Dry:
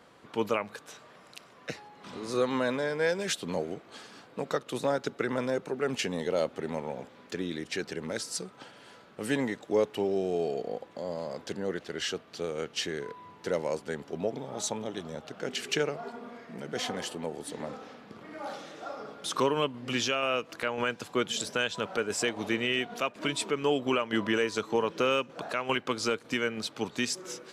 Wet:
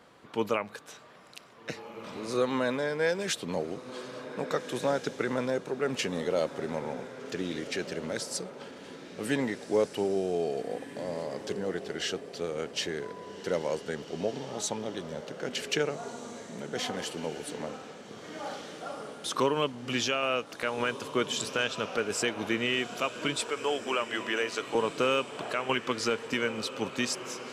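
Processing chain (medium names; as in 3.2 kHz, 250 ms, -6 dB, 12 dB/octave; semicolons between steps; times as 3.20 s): 23.37–24.75 s: high-pass 470 Hz 12 dB/octave; echo that smears into a reverb 1641 ms, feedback 43%, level -12 dB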